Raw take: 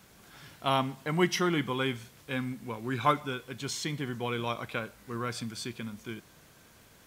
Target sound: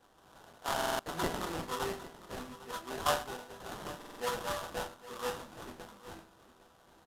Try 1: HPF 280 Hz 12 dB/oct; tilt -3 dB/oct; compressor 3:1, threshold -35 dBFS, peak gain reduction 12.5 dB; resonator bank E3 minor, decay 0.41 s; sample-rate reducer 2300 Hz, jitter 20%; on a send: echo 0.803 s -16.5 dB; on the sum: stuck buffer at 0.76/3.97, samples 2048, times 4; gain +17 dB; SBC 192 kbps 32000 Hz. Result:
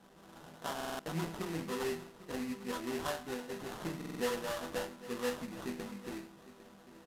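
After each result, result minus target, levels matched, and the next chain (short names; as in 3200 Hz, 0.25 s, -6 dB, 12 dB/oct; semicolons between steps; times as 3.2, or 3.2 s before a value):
compressor: peak gain reduction +12.5 dB; 250 Hz band +7.0 dB
HPF 280 Hz 12 dB/oct; tilt -3 dB/oct; resonator bank E3 minor, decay 0.41 s; sample-rate reducer 2300 Hz, jitter 20%; on a send: echo 0.803 s -16.5 dB; on the sum: stuck buffer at 0.76/3.97, samples 2048, times 4; gain +17 dB; SBC 192 kbps 32000 Hz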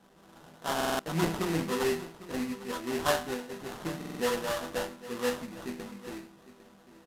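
250 Hz band +6.0 dB
HPF 770 Hz 12 dB/oct; tilt -3 dB/oct; resonator bank E3 minor, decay 0.41 s; sample-rate reducer 2300 Hz, jitter 20%; on a send: echo 0.803 s -16.5 dB; on the sum: stuck buffer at 0.76/3.97, samples 2048, times 4; gain +17 dB; SBC 192 kbps 32000 Hz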